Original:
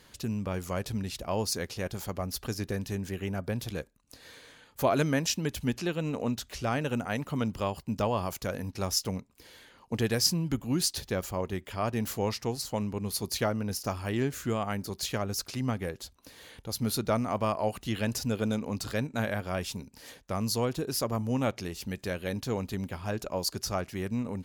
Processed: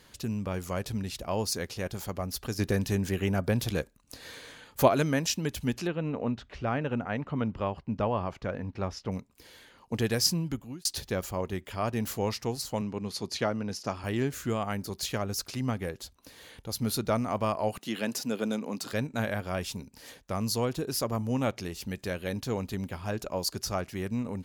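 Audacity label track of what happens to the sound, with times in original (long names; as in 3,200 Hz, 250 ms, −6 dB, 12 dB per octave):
2.590000	4.880000	clip gain +5.5 dB
5.870000	9.120000	low-pass filter 2,400 Hz
10.380000	10.850000	fade out
12.810000	14.040000	band-pass filter 120–6,200 Hz
17.780000	18.930000	high-pass filter 180 Hz 24 dB per octave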